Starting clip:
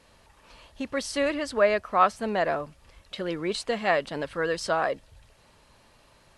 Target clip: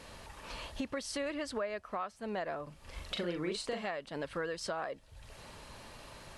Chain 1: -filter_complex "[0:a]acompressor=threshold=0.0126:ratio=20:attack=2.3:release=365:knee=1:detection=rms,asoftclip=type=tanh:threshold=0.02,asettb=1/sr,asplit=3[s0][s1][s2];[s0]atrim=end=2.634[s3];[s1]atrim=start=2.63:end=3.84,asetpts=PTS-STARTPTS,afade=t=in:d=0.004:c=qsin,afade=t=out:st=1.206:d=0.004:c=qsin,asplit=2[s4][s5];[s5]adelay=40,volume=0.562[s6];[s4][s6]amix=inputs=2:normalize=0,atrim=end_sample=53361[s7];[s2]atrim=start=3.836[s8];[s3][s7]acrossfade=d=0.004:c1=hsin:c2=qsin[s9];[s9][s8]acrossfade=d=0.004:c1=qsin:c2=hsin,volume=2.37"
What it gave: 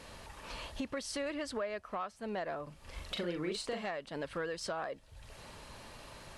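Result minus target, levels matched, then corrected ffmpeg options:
saturation: distortion +21 dB
-filter_complex "[0:a]acompressor=threshold=0.0126:ratio=20:attack=2.3:release=365:knee=1:detection=rms,asoftclip=type=tanh:threshold=0.075,asettb=1/sr,asplit=3[s0][s1][s2];[s0]atrim=end=2.634[s3];[s1]atrim=start=2.63:end=3.84,asetpts=PTS-STARTPTS,afade=t=in:d=0.004:c=qsin,afade=t=out:st=1.206:d=0.004:c=qsin,asplit=2[s4][s5];[s5]adelay=40,volume=0.562[s6];[s4][s6]amix=inputs=2:normalize=0,atrim=end_sample=53361[s7];[s2]atrim=start=3.836[s8];[s3][s7]acrossfade=d=0.004:c1=hsin:c2=qsin[s9];[s9][s8]acrossfade=d=0.004:c1=qsin:c2=hsin,volume=2.37"

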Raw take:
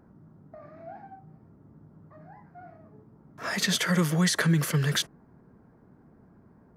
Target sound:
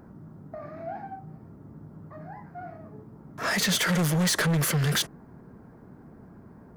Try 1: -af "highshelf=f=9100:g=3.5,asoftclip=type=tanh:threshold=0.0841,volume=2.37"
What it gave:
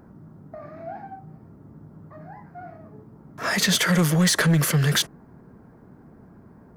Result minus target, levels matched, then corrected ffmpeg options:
saturation: distortion -7 dB
-af "highshelf=f=9100:g=3.5,asoftclip=type=tanh:threshold=0.0355,volume=2.37"

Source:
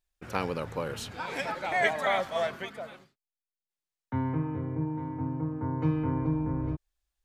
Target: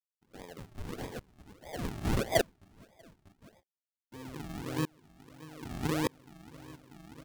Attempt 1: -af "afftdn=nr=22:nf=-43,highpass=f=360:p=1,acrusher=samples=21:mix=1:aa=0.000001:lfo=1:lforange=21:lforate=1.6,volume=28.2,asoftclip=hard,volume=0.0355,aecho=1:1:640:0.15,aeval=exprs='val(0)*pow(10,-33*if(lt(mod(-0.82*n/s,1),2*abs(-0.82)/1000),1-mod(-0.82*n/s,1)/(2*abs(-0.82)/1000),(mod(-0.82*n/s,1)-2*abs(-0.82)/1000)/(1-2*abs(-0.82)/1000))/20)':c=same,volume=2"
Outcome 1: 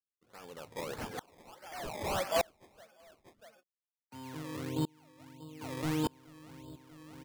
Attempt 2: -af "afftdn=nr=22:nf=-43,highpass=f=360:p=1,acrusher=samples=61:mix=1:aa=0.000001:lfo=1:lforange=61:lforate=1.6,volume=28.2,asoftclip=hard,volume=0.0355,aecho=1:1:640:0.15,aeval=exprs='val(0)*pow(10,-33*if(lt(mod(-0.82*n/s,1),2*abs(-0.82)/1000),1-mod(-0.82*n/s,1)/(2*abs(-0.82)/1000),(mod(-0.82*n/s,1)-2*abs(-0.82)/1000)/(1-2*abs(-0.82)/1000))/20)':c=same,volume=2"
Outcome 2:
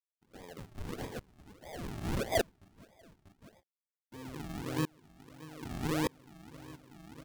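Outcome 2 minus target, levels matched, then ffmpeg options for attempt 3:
overload inside the chain: distortion +14 dB
-af "afftdn=nr=22:nf=-43,highpass=f=360:p=1,acrusher=samples=61:mix=1:aa=0.000001:lfo=1:lforange=61:lforate=1.6,volume=8.91,asoftclip=hard,volume=0.112,aecho=1:1:640:0.15,aeval=exprs='val(0)*pow(10,-33*if(lt(mod(-0.82*n/s,1),2*abs(-0.82)/1000),1-mod(-0.82*n/s,1)/(2*abs(-0.82)/1000),(mod(-0.82*n/s,1)-2*abs(-0.82)/1000)/(1-2*abs(-0.82)/1000))/20)':c=same,volume=2"

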